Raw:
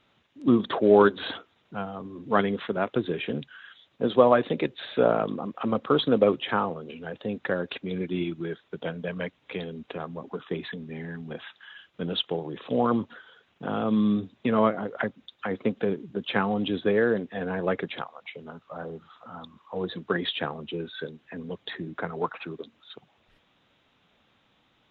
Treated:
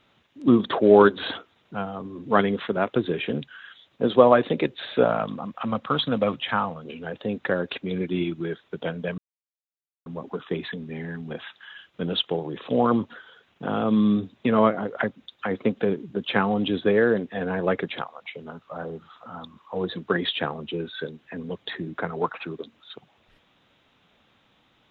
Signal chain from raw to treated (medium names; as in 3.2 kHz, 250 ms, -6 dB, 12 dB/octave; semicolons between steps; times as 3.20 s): 5.04–6.85 s: peaking EQ 380 Hz -14.5 dB 0.75 oct; 9.18–10.06 s: mute; trim +3 dB